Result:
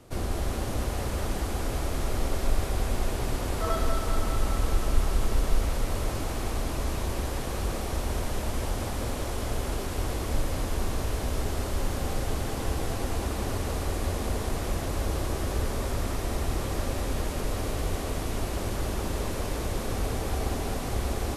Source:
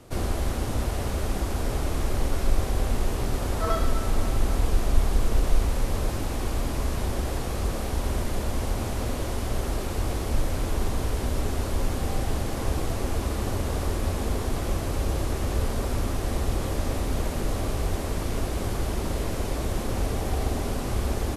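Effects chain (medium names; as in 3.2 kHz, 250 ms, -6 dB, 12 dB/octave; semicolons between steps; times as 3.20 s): thinning echo 199 ms, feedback 79%, high-pass 320 Hz, level -5 dB; trim -3 dB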